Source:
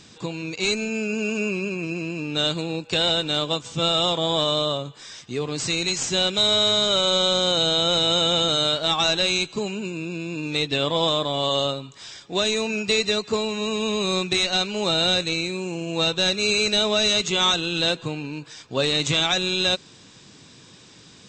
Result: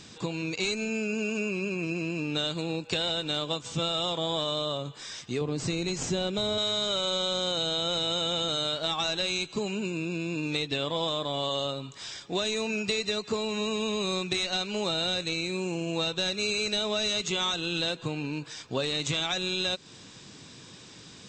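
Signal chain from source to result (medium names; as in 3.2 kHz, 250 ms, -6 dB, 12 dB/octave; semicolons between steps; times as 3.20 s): 5.41–6.58 s: tilt shelf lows +6 dB, about 940 Hz; compression 4:1, threshold -27 dBFS, peak gain reduction 9.5 dB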